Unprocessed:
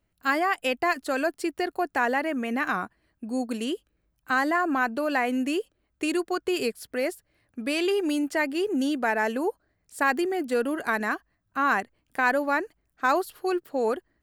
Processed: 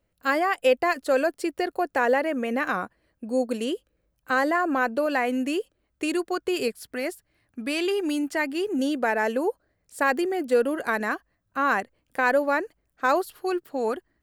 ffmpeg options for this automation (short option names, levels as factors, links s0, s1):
-af "asetnsamples=n=441:p=0,asendcmd='5.06 equalizer g 3.5;6.68 equalizer g -4.5;8.79 equalizer g 7;13.23 equalizer g -2.5',equalizer=f=520:t=o:w=0.35:g=10"